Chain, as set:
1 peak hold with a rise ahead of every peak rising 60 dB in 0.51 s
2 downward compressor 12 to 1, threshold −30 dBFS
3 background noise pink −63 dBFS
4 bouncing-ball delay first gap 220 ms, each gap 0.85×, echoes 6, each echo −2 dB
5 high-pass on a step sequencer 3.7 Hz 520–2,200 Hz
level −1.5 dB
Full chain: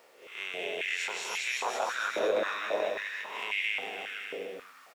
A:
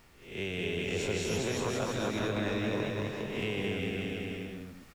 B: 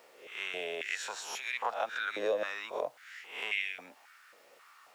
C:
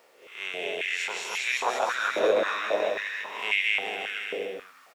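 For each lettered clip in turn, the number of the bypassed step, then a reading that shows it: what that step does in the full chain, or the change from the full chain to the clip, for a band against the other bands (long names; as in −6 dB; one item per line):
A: 5, 250 Hz band +16.0 dB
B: 4, change in integrated loudness −3.5 LU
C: 2, average gain reduction 2.5 dB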